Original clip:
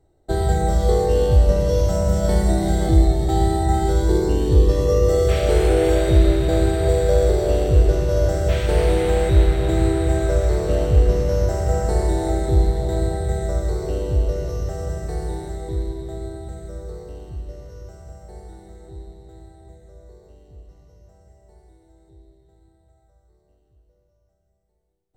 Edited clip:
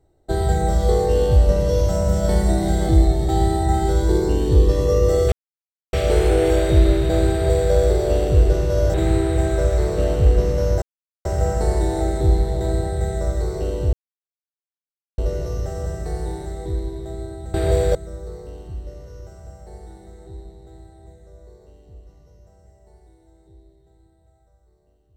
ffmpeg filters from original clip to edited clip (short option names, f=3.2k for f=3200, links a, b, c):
-filter_complex "[0:a]asplit=7[a][b][c][d][e][f][g];[a]atrim=end=5.32,asetpts=PTS-STARTPTS,afade=t=out:st=5.316:d=0.004:c=hsin,apad=pad_dur=0.61[h];[b]atrim=start=5.32:end=8.332,asetpts=PTS-STARTPTS,afade=t=in:d=0.004:c=hsin[i];[c]atrim=start=9.648:end=11.53,asetpts=PTS-STARTPTS,afade=t=out:st=1.878:d=0.004:c=hsin,apad=pad_dur=0.43[j];[d]atrim=start=11.53:end=14.21,asetpts=PTS-STARTPTS,afade=t=in:d=0.004:c=hsin,afade=t=out:st=2.676:d=0.004:c=hsin,apad=pad_dur=1.25[k];[e]atrim=start=14.21:end=16.572,asetpts=PTS-STARTPTS,afade=t=in:d=0.004:c=hsin[l];[f]atrim=start=6.708:end=7.122[m];[g]atrim=start=16.568[n];[h][i]concat=n=2:v=0:a=1[o];[j][k][l]concat=n=3:v=0:a=1[p];[o][p]acrossfade=d=0.004:c1=hsin:c2=hsin[q];[q][m]acrossfade=d=0.004:c1=hsin:c2=hsin[r];[r][n]acrossfade=d=0.004:c1=hsin:c2=hsin"